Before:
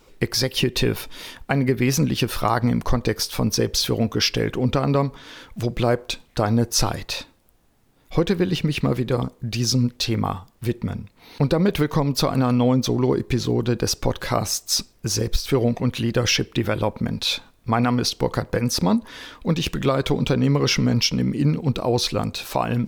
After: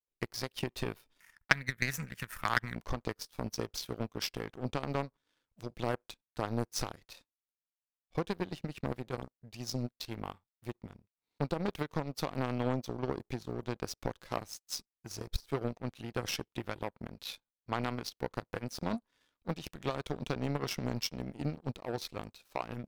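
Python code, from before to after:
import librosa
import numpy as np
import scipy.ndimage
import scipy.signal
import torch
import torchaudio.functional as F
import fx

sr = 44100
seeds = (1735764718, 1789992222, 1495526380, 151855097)

y = fx.curve_eq(x, sr, hz=(180.0, 360.0, 1900.0, 3800.0, 7200.0), db=(0, -20, 14, -14, 6), at=(1.2, 2.76))
y = fx.power_curve(y, sr, exponent=2.0)
y = F.gain(torch.from_numpy(y), -2.0).numpy()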